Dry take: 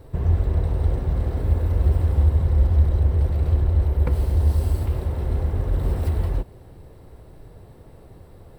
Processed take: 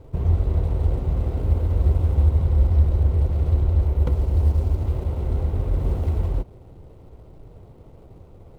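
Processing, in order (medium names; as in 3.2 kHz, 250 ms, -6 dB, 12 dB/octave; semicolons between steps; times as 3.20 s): median filter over 25 samples; band-stop 1.7 kHz, Q 8.2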